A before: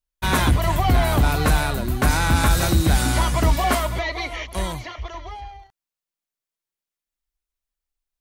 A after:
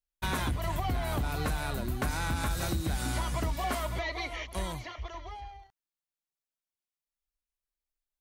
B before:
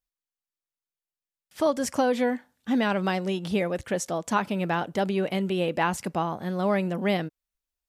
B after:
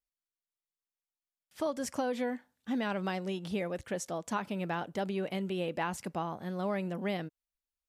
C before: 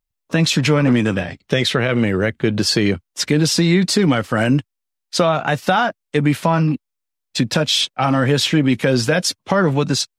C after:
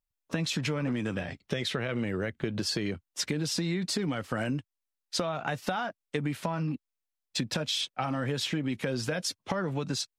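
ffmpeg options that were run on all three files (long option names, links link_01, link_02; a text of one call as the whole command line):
ffmpeg -i in.wav -af "acompressor=threshold=-20dB:ratio=6,volume=-7.5dB" out.wav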